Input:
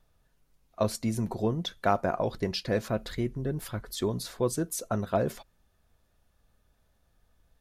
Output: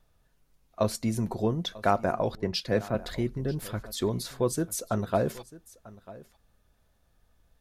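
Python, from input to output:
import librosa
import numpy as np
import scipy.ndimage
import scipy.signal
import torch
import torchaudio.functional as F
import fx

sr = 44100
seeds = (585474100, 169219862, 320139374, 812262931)

y = x + 10.0 ** (-19.5 / 20.0) * np.pad(x, (int(944 * sr / 1000.0), 0))[:len(x)]
y = fx.band_widen(y, sr, depth_pct=70, at=(2.35, 2.95))
y = y * librosa.db_to_amplitude(1.0)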